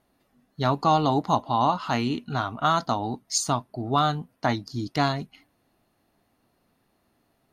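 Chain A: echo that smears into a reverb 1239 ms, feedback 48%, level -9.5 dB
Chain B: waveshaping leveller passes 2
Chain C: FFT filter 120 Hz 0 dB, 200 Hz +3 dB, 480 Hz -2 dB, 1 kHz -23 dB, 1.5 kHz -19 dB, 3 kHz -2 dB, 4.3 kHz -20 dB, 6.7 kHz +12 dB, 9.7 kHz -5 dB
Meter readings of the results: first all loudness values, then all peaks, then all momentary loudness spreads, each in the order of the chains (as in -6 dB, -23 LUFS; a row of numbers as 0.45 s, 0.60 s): -26.0 LUFS, -20.0 LUFS, -27.0 LUFS; -8.0 dBFS, -8.0 dBFS, -4.5 dBFS; 16 LU, 6 LU, 12 LU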